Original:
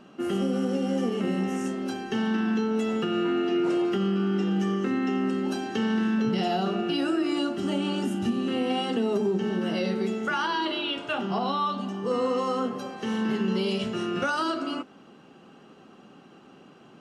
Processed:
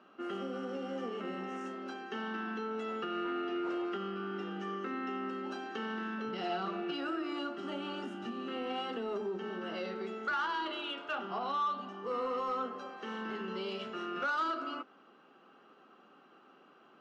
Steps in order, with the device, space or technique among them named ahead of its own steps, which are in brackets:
intercom (band-pass filter 320–4,100 Hz; parametric band 1,300 Hz +7.5 dB 0.54 octaves; soft clipping −17 dBFS, distortion −22 dB)
0:06.43–0:06.91: comb filter 6.1 ms, depth 73%
level −8.5 dB

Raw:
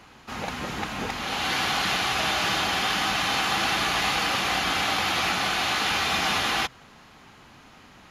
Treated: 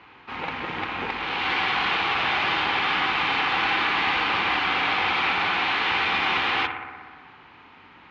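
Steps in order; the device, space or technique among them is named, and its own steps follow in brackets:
analogue delay pedal into a guitar amplifier (bucket-brigade delay 61 ms, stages 1,024, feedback 77%, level −9 dB; tube saturation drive 22 dB, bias 0.8; loudspeaker in its box 77–3,500 Hz, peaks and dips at 80 Hz −4 dB, 130 Hz −8 dB, 210 Hz −9 dB, 630 Hz −8 dB, 940 Hz +4 dB, 2,300 Hz +4 dB)
level +5.5 dB

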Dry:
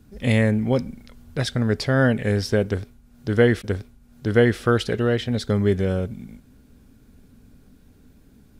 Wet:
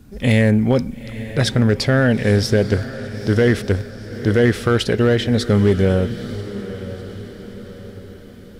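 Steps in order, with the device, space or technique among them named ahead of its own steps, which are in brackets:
limiter into clipper (brickwall limiter −12 dBFS, peak gain reduction 7.5 dB; hard clipping −14 dBFS, distortion −26 dB)
feedback delay with all-pass diffusion 913 ms, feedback 50%, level −13.5 dB
level +6.5 dB

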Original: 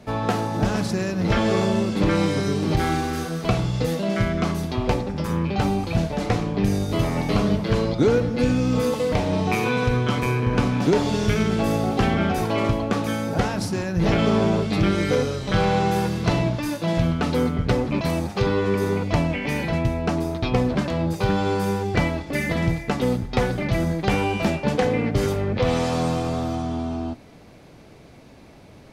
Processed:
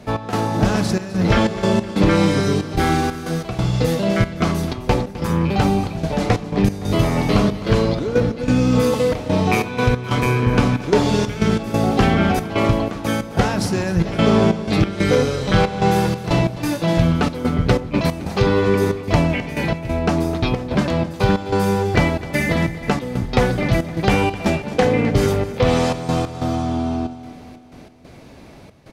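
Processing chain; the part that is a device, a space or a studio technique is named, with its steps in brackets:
trance gate with a delay (gate pattern "x.xxxx.xx." 92 BPM −12 dB; repeating echo 258 ms, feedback 54%, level −16 dB)
level +5 dB

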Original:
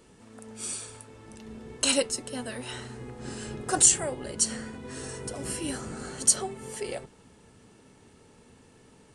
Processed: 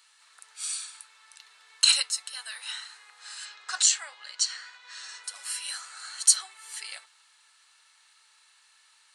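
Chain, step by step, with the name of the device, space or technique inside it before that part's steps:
0:03.45–0:05.24: low-pass filter 6,800 Hz 24 dB per octave
headphones lying on a table (high-pass filter 1,200 Hz 24 dB per octave; parametric band 4,100 Hz +9.5 dB 0.28 octaves)
level +1.5 dB

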